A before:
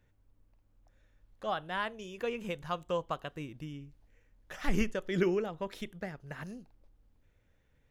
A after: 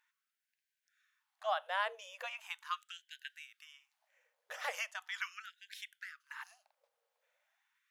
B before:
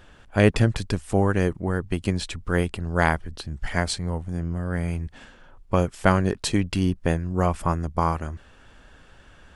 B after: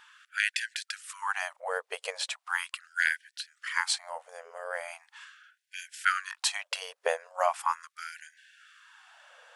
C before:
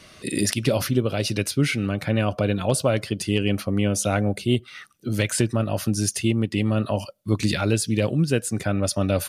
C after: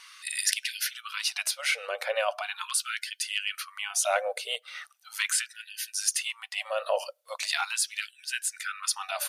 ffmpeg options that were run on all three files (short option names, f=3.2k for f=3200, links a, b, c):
-af "afftfilt=real='re*gte(b*sr/1024,430*pow(1500/430,0.5+0.5*sin(2*PI*0.39*pts/sr)))':imag='im*gte(b*sr/1024,430*pow(1500/430,0.5+0.5*sin(2*PI*0.39*pts/sr)))':win_size=1024:overlap=0.75"